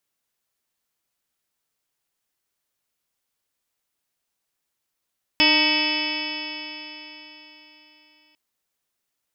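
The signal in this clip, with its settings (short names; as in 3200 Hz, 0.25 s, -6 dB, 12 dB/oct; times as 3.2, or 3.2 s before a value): stretched partials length 2.95 s, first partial 302 Hz, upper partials -7/-3/-14/-14.5/-5/0/3.5/2/-2/-18/-18/-3.5/2.5 dB, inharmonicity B 0.0027, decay 3.89 s, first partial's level -22.5 dB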